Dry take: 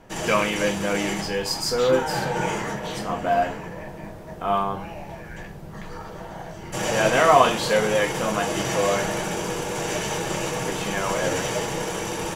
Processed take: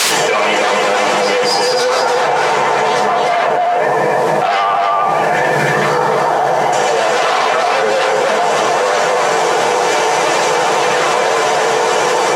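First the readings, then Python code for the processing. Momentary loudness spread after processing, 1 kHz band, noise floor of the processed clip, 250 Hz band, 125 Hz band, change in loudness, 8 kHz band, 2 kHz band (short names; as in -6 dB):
1 LU, +13.5 dB, -14 dBFS, +3.0 dB, +2.0 dB, +10.0 dB, +8.5 dB, +12.0 dB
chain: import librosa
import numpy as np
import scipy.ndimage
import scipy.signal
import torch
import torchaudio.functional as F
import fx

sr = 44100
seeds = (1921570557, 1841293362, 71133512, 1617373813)

y = fx.fade_in_head(x, sr, length_s=0.87)
y = fx.rider(y, sr, range_db=4, speed_s=0.5)
y = y + 10.0 ** (-3.5 / 20.0) * np.pad(y, (int(297 * sr / 1000.0), 0))[:len(y)]
y = 10.0 ** (-20.5 / 20.0) * (np.abs((y / 10.0 ** (-20.5 / 20.0) + 3.0) % 4.0 - 2.0) - 1.0)
y = fx.dynamic_eq(y, sr, hz=750.0, q=1.3, threshold_db=-42.0, ratio=4.0, max_db=7)
y = fx.rev_fdn(y, sr, rt60_s=0.55, lf_ratio=1.0, hf_ratio=0.5, size_ms=40.0, drr_db=-2.5)
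y = fx.vibrato(y, sr, rate_hz=12.0, depth_cents=37.0)
y = fx.dmg_noise_colour(y, sr, seeds[0], colour='white', level_db=-46.0)
y = fx.bandpass_edges(y, sr, low_hz=400.0, high_hz=7200.0)
y = fx.env_flatten(y, sr, amount_pct=100)
y = F.gain(torch.from_numpy(y), -1.0).numpy()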